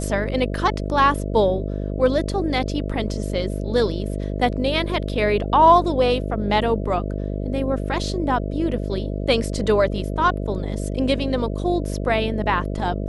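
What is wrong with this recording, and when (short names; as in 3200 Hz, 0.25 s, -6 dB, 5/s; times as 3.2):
buzz 50 Hz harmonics 13 -26 dBFS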